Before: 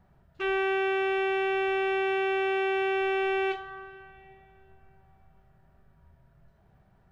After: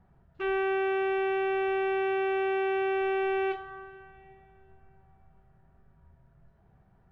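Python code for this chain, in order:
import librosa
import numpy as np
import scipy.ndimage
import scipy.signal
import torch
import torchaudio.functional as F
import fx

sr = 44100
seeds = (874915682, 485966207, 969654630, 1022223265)

y = fx.lowpass(x, sr, hz=1700.0, slope=6)
y = fx.notch(y, sr, hz=600.0, q=12.0)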